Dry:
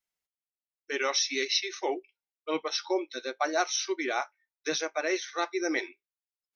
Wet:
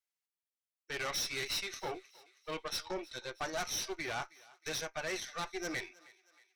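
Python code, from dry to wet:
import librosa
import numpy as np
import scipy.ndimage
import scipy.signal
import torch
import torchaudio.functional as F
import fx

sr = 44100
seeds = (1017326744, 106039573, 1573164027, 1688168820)

p1 = fx.low_shelf(x, sr, hz=420.0, db=-9.5)
p2 = fx.tube_stage(p1, sr, drive_db=32.0, bias=0.75)
y = p2 + fx.echo_thinned(p2, sr, ms=316, feedback_pct=52, hz=610.0, wet_db=-21.0, dry=0)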